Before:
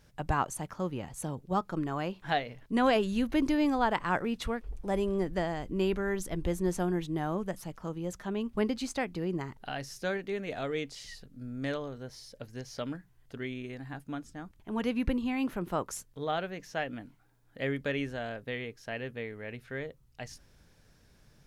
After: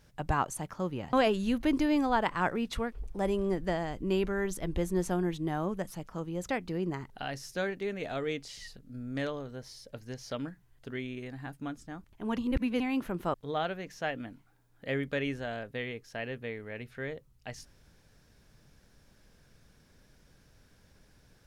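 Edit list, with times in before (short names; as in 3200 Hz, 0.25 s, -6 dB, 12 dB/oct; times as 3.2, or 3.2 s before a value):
1.13–2.82 cut
8.18–8.96 cut
14.85–15.27 reverse
15.81–16.07 cut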